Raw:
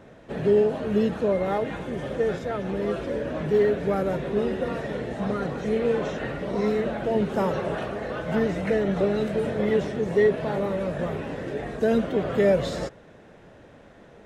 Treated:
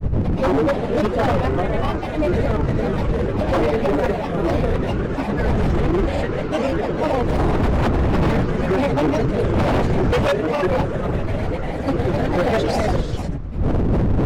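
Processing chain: wind noise 120 Hz -22 dBFS; gated-style reverb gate 440 ms rising, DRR 3.5 dB; granulator 100 ms, grains 20 per s, pitch spread up and down by 7 st; wavefolder -17 dBFS; trim +5 dB

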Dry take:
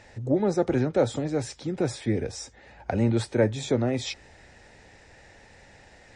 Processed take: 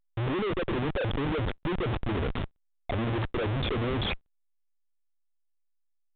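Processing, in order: resonances exaggerated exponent 3; Schmitt trigger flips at -33.5 dBFS; A-law 64 kbps 8 kHz

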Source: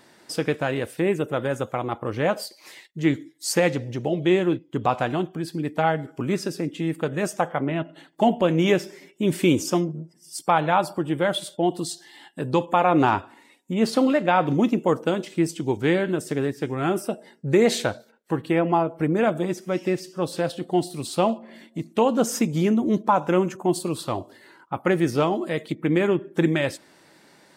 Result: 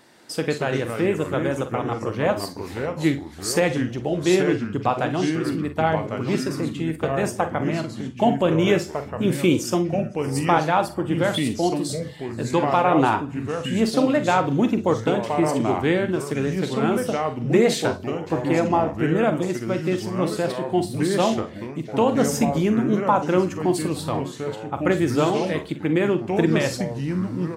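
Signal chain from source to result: ever faster or slower copies 153 ms, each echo -3 st, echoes 3, each echo -6 dB; multi-tap echo 44/58 ms -11.5/-16.5 dB

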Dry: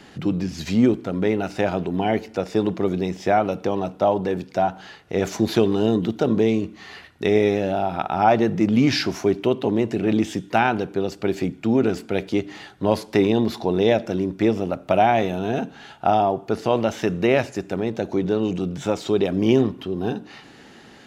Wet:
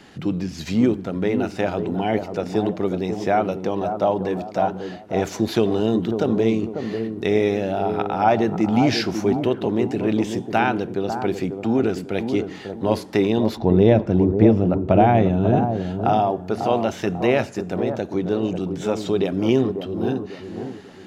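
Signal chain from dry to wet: 13.57–15.66 s: RIAA curve playback; bucket-brigade echo 544 ms, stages 4096, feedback 37%, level -7 dB; trim -1 dB

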